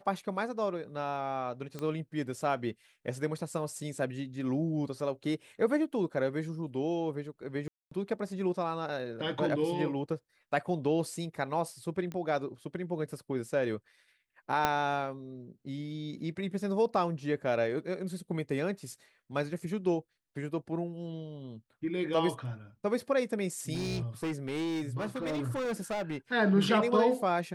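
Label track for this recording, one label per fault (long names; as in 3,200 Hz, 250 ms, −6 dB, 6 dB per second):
1.790000	1.790000	click −24 dBFS
7.680000	7.910000	drop-out 234 ms
12.120000	12.120000	click −26 dBFS
14.650000	14.650000	click −11 dBFS
23.730000	26.170000	clipping −30 dBFS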